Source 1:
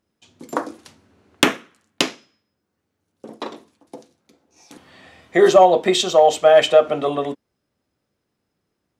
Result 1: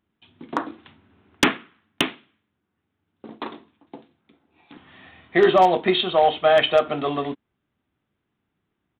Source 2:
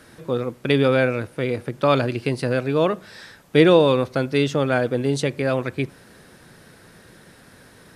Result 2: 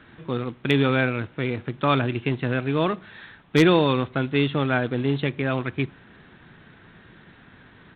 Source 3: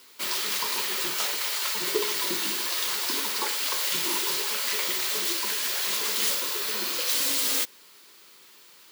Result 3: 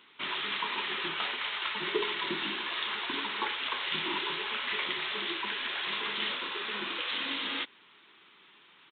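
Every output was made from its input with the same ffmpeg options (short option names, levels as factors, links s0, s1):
-af "equalizer=f=530:t=o:w=0.58:g=-9,aresample=8000,acrusher=bits=5:mode=log:mix=0:aa=0.000001,aresample=44100,aeval=exprs='0.473*(abs(mod(val(0)/0.473+3,4)-2)-1)':c=same"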